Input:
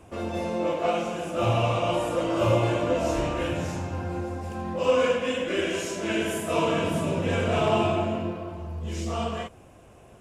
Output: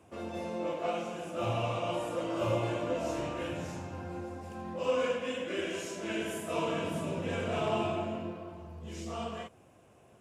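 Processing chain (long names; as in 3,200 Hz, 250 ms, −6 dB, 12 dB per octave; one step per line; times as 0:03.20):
high-pass filter 96 Hz
level −8 dB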